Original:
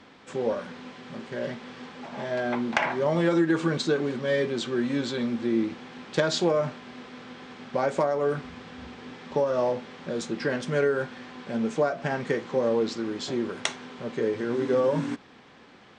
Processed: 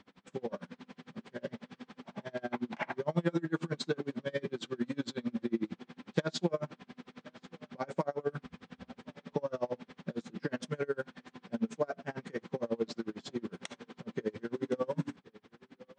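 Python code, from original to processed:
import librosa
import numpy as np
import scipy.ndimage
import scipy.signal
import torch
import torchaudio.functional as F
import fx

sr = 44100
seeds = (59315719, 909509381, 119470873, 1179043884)

y = fx.peak_eq(x, sr, hz=190.0, db=9.5, octaves=0.45)
y = y + 10.0 ** (-22.5 / 20.0) * np.pad(y, (int(1067 * sr / 1000.0), 0))[:len(y)]
y = y * 10.0 ** (-32 * (0.5 - 0.5 * np.cos(2.0 * np.pi * 11.0 * np.arange(len(y)) / sr)) / 20.0)
y = F.gain(torch.from_numpy(y), -4.5).numpy()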